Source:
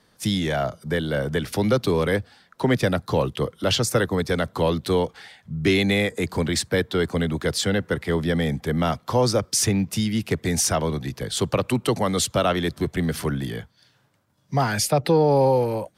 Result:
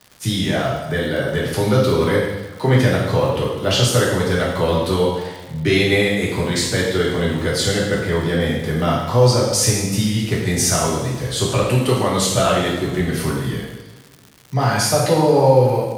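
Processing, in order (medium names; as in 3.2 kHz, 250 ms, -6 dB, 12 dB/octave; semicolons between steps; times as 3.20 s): two-slope reverb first 0.99 s, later 2.6 s, DRR -5.5 dB; crackle 180 per s -30 dBFS; trim -1.5 dB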